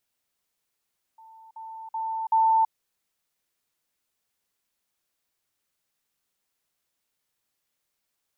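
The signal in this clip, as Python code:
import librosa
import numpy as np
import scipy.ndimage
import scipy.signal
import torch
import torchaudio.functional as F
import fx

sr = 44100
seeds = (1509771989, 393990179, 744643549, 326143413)

y = fx.level_ladder(sr, hz=892.0, from_db=-47.0, step_db=10.0, steps=4, dwell_s=0.33, gap_s=0.05)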